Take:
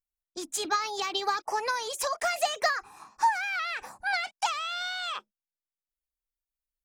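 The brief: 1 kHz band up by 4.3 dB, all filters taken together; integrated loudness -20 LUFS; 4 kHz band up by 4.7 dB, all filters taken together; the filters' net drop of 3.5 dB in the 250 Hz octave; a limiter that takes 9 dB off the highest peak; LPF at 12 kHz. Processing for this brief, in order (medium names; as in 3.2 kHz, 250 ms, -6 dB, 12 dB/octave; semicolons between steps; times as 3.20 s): low-pass 12 kHz; peaking EQ 250 Hz -7 dB; peaking EQ 1 kHz +5.5 dB; peaking EQ 4 kHz +5.5 dB; trim +8.5 dB; peak limiter -10.5 dBFS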